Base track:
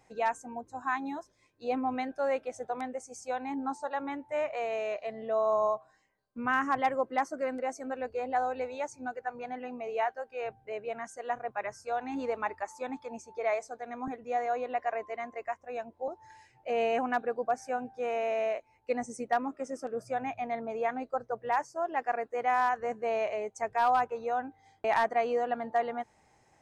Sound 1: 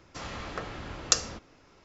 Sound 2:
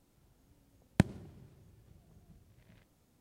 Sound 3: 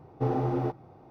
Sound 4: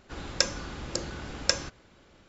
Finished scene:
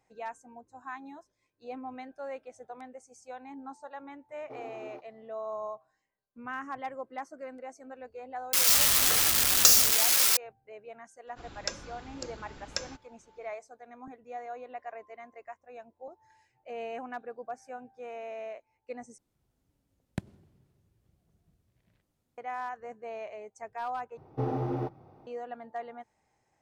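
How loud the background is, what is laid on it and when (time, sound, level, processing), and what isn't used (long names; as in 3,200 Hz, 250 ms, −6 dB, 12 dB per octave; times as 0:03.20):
base track −9.5 dB
0:04.29: mix in 3 −14.5 dB + high-pass filter 330 Hz
0:08.53: mix in 1 −1 dB + spike at every zero crossing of −10.5 dBFS
0:11.27: mix in 4 −9.5 dB
0:19.18: overwrite with 2 −9.5 dB + pitch vibrato 12 Hz 83 cents
0:24.17: overwrite with 3 −3.5 dB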